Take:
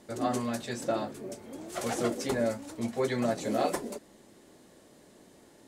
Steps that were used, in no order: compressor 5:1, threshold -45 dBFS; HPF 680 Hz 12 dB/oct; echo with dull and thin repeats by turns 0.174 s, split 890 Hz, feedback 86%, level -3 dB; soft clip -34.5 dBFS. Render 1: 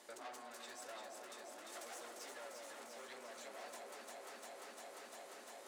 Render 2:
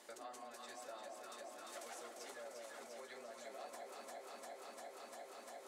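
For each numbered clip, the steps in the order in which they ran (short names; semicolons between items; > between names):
soft clip > echo with dull and thin repeats by turns > compressor > HPF; echo with dull and thin repeats by turns > compressor > soft clip > HPF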